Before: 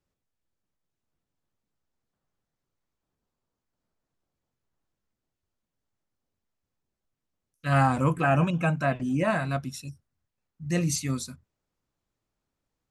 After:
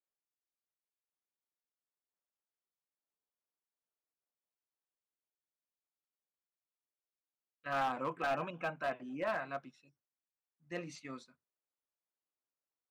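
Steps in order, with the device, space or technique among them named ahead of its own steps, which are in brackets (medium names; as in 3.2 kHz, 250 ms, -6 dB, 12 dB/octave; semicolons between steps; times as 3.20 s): walkie-talkie (band-pass 420–2500 Hz; hard clipper -21.5 dBFS, distortion -14 dB; gate -44 dBFS, range -7 dB); trim -7.5 dB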